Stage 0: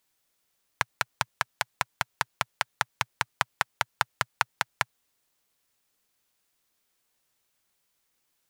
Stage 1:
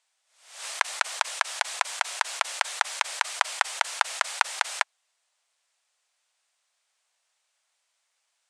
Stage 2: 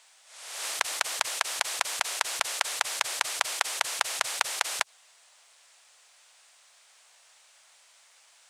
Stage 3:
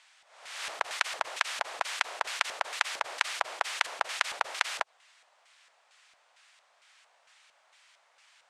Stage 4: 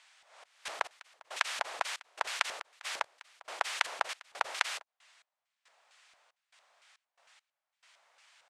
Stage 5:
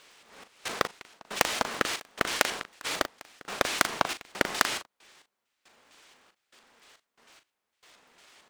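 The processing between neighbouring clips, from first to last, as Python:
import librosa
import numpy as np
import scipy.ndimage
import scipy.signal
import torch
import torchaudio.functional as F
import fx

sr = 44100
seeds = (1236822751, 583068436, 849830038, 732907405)

y1 = scipy.signal.sosfilt(scipy.signal.ellip(3, 1.0, 50, [620.0, 8700.0], 'bandpass', fs=sr, output='sos'), x)
y1 = fx.pre_swell(y1, sr, db_per_s=98.0)
y1 = F.gain(torch.from_numpy(y1), 3.5).numpy()
y2 = fx.spectral_comp(y1, sr, ratio=2.0)
y3 = fx.filter_lfo_bandpass(y2, sr, shape='square', hz=2.2, low_hz=670.0, high_hz=1900.0, q=0.76)
y3 = F.gain(torch.from_numpy(y3), 2.0).numpy()
y4 = fx.step_gate(y3, sr, bpm=69, pattern='xx.x..xxx.', floor_db=-24.0, edge_ms=4.5)
y4 = F.gain(torch.from_numpy(y4), -1.5).numpy()
y5 = fx.cycle_switch(y4, sr, every=3, mode='inverted')
y5 = fx.doubler(y5, sr, ms=39.0, db=-10.0)
y5 = F.gain(torch.from_numpy(y5), 6.0).numpy()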